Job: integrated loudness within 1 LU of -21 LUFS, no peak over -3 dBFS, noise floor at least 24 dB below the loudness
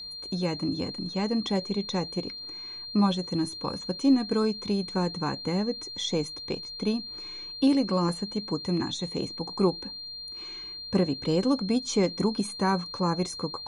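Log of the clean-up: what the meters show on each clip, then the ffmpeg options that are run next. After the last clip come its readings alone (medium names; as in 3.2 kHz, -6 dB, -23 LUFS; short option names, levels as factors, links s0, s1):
steady tone 4.2 kHz; tone level -37 dBFS; loudness -28.5 LUFS; peak level -11.0 dBFS; loudness target -21.0 LUFS
-> -af "bandreject=f=4200:w=30"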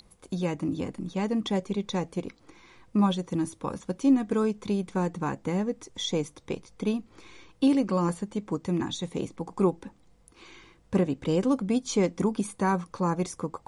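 steady tone not found; loudness -28.5 LUFS; peak level -11.0 dBFS; loudness target -21.0 LUFS
-> -af "volume=2.37"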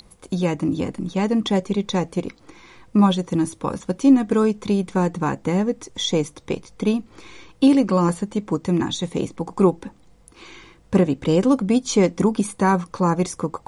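loudness -21.0 LUFS; peak level -3.5 dBFS; noise floor -53 dBFS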